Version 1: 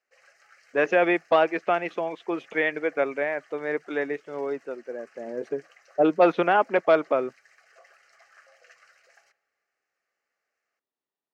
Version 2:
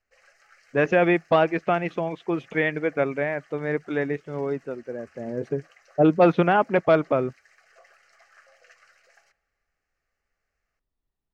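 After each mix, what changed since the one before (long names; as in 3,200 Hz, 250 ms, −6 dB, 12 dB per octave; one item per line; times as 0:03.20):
speech: remove high-pass filter 320 Hz 12 dB per octave
master: remove high-pass filter 140 Hz 6 dB per octave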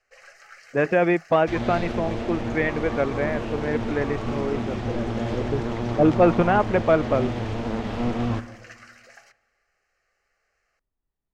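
speech: add Gaussian smoothing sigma 2.1 samples
first sound +9.5 dB
second sound: unmuted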